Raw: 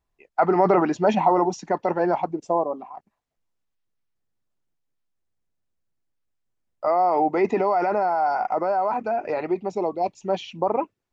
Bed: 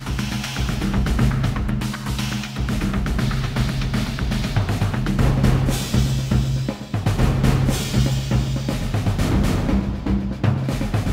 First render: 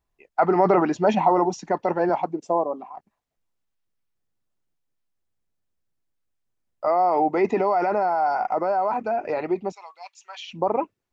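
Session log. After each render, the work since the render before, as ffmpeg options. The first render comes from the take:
-filter_complex "[0:a]asettb=1/sr,asplit=3[a][b][c];[a]atrim=end=2.094[d];[b]atrim=start=2.09:end=2.95,asetpts=PTS-STARTPTS,afade=t=in:d=0.004:c=qsin,afade=t=out:st=0.856:d=0.004:c=qsin,highpass=140[e];[c]atrim=start=2.946[f];[d][e]acrossfade=d=0.004:c1=hsin:c2=qsin[g];[g][f]acrossfade=d=0.004:c1=qsin:c2=hsin,asettb=1/sr,asplit=3[h][i][j];[h]atrim=end=9.724[k];[i]atrim=start=9.72:end=10.49,asetpts=PTS-STARTPTS,afade=t=in:d=0.004:c=qsin,afade=t=out:st=0.766:d=0.004:c=qsin,highpass=f=1.2k:w=0.5412,highpass=f=1.2k:w=1.3066[l];[j]atrim=start=10.486[m];[k][l]acrossfade=d=0.004:c1=hsin:c2=qsin[n];[n][m]acrossfade=d=0.004:c1=qsin:c2=hsin"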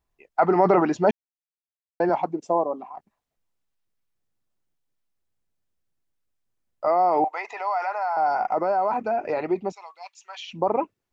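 -filter_complex "[0:a]asettb=1/sr,asplit=3[a][b][c];[a]atrim=end=7.244[d];[b]atrim=start=7.24:end=8.17,asetpts=PTS-STARTPTS,afade=t=in:d=0.004:c=qsin,afade=t=out:st=0.926:d=0.004:c=qsin,highpass=f=770:w=0.5412,highpass=f=770:w=1.3066[e];[c]atrim=start=8.166[f];[d][e]acrossfade=d=0.004:c1=hsin:c2=qsin[g];[g][f]acrossfade=d=0.004:c1=qsin:c2=hsin,asplit=3[h][i][j];[h]atrim=end=1.11,asetpts=PTS-STARTPTS,afade=t=out:st=1.106:d=0.004:c=hsin[k];[i]atrim=start=1.11:end=2,asetpts=PTS-STARTPTS,volume=0[l];[j]atrim=start=2,asetpts=PTS-STARTPTS,afade=t=in:d=0.004:c=hsin[m];[k][l][m]concat=n=3:v=0:a=1"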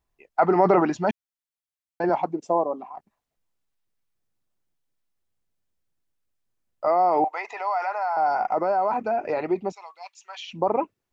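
-filter_complex "[0:a]asettb=1/sr,asplit=3[a][b][c];[a]atrim=end=0.904[d];[b]atrim=start=0.9:end=2.04,asetpts=PTS-STARTPTS,afade=t=in:d=0.004:c=qsin,afade=t=out:st=1.136:d=0.004:c=qsin,equalizer=f=450:w=1.5:g=-9[e];[c]atrim=start=2.036[f];[d][e]acrossfade=d=0.004:c1=hsin:c2=qsin[g];[g][f]acrossfade=d=0.004:c1=qsin:c2=hsin"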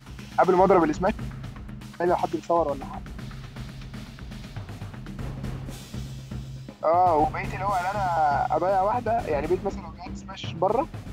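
-filter_complex "[1:a]volume=-16.5dB[a];[0:a][a]amix=inputs=2:normalize=0"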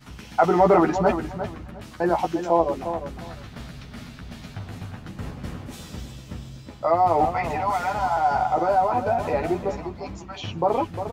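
-filter_complex "[0:a]asplit=2[a][b];[b]adelay=12,volume=-4.5dB[c];[a][c]amix=inputs=2:normalize=0,asplit=2[d][e];[e]adelay=353,lowpass=f=2.3k:p=1,volume=-9dB,asplit=2[f][g];[g]adelay=353,lowpass=f=2.3k:p=1,volume=0.21,asplit=2[h][i];[i]adelay=353,lowpass=f=2.3k:p=1,volume=0.21[j];[d][f][h][j]amix=inputs=4:normalize=0"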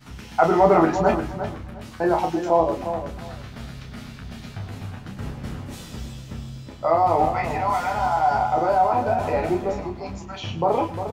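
-filter_complex "[0:a]asplit=2[a][b];[b]adelay=31,volume=-5.5dB[c];[a][c]amix=inputs=2:normalize=0,aecho=1:1:107:0.168"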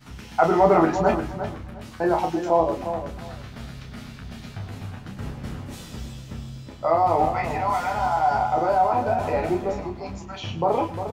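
-af "volume=-1dB"

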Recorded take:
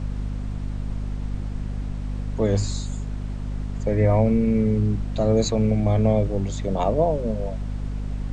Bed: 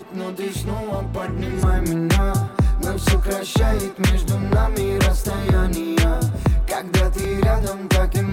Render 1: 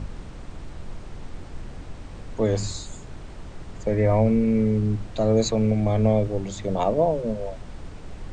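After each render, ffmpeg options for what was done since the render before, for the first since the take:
-af "bandreject=f=50:t=h:w=6,bandreject=f=100:t=h:w=6,bandreject=f=150:t=h:w=6,bandreject=f=200:t=h:w=6,bandreject=f=250:t=h:w=6"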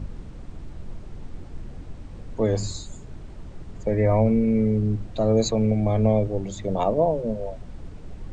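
-af "afftdn=nr=7:nf=-40"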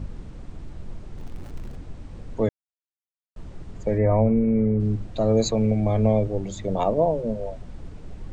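-filter_complex "[0:a]asettb=1/sr,asplit=3[a][b][c];[a]atrim=end=1.184[d];[b]atrim=start=1.18:end=1.76,asetpts=PTS-STARTPTS,afade=t=in:d=0.004:c=qsin,afade=t=out:st=0.576:d=0.004:c=qsin,aeval=exprs='val(0)+0.5*0.00794*sgn(val(0))':c=same[e];[c]atrim=start=1.756[f];[d][e]acrossfade=d=0.004:c1=hsin:c2=qsin[g];[g][f]acrossfade=d=0.004:c1=qsin:c2=hsin,asettb=1/sr,asplit=3[h][i][j];[h]atrim=end=3.984[k];[i]atrim=start=3.98:end=4.8,asetpts=PTS-STARTPTS,afade=t=in:d=0.004:c=qsin,afade=t=out:st=0.816:d=0.004:c=qsin,lowpass=1.8k[l];[j]atrim=start=4.796[m];[k][l]acrossfade=d=0.004:c1=hsin:c2=qsin[n];[n][m]acrossfade=d=0.004:c1=qsin:c2=hsin,asplit=3[o][p][q];[o]atrim=end=2.49,asetpts=PTS-STARTPTS,afade=t=out:st=2.486:d=0.004:c=hsin[r];[p]atrim=start=2.49:end=3.36,asetpts=PTS-STARTPTS,volume=0[s];[q]atrim=start=3.36,asetpts=PTS-STARTPTS,afade=t=in:d=0.004:c=hsin[t];[r][s][t]concat=n=3:v=0:a=1"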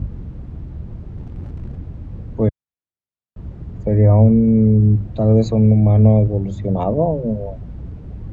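-af "highpass=77,aemphasis=mode=reproduction:type=riaa"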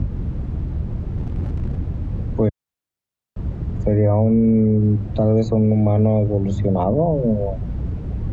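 -filter_complex "[0:a]acrossover=split=250|1500[a][b][c];[a]acompressor=threshold=-22dB:ratio=4[d];[b]acompressor=threshold=-20dB:ratio=4[e];[c]acompressor=threshold=-49dB:ratio=4[f];[d][e][f]amix=inputs=3:normalize=0,asplit=2[g][h];[h]alimiter=limit=-19.5dB:level=0:latency=1:release=238,volume=1dB[i];[g][i]amix=inputs=2:normalize=0"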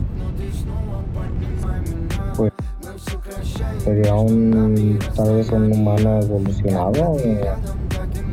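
-filter_complex "[1:a]volume=-10dB[a];[0:a][a]amix=inputs=2:normalize=0"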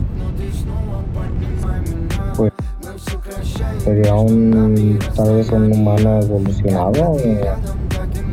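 -af "volume=3dB"

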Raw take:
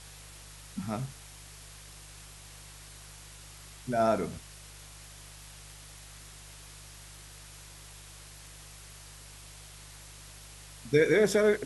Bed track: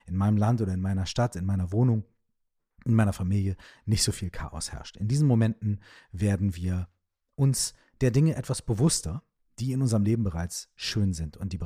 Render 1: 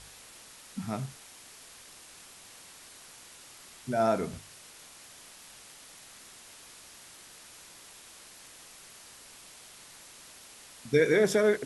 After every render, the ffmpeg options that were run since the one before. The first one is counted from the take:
-af "bandreject=f=50:t=h:w=4,bandreject=f=100:t=h:w=4,bandreject=f=150:t=h:w=4"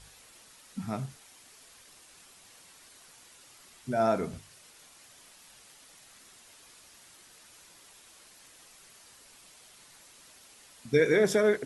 -af "afftdn=nr=6:nf=-52"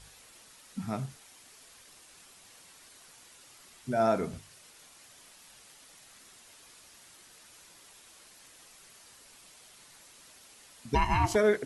-filter_complex "[0:a]asplit=3[a][b][c];[a]afade=t=out:st=10.94:d=0.02[d];[b]aeval=exprs='val(0)*sin(2*PI*510*n/s)':c=same,afade=t=in:st=10.94:d=0.02,afade=t=out:st=11.34:d=0.02[e];[c]afade=t=in:st=11.34:d=0.02[f];[d][e][f]amix=inputs=3:normalize=0"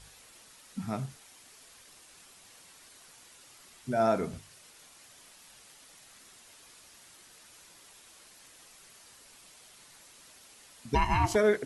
-af anull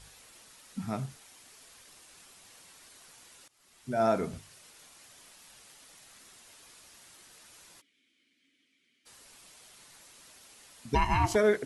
-filter_complex "[0:a]asplit=3[a][b][c];[a]afade=t=out:st=7.8:d=0.02[d];[b]asplit=3[e][f][g];[e]bandpass=f=270:t=q:w=8,volume=0dB[h];[f]bandpass=f=2.29k:t=q:w=8,volume=-6dB[i];[g]bandpass=f=3.01k:t=q:w=8,volume=-9dB[j];[h][i][j]amix=inputs=3:normalize=0,afade=t=in:st=7.8:d=0.02,afade=t=out:st=9.05:d=0.02[k];[c]afade=t=in:st=9.05:d=0.02[l];[d][k][l]amix=inputs=3:normalize=0,asplit=2[m][n];[m]atrim=end=3.48,asetpts=PTS-STARTPTS,afade=t=out:st=3.476:d=0.004:c=hsin:silence=0.0891251[o];[n]atrim=start=3.48,asetpts=PTS-STARTPTS,afade=t=in:d=0.58:silence=0.0891251[p];[o][p]concat=n=2:v=0:a=1"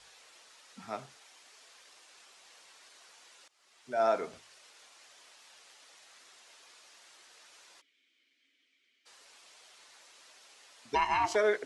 -filter_complex "[0:a]acrossover=split=370 7700:gain=0.0891 1 0.112[a][b][c];[a][b][c]amix=inputs=3:normalize=0"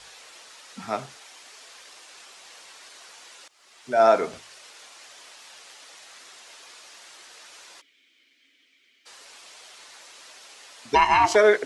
-af "volume=10.5dB"

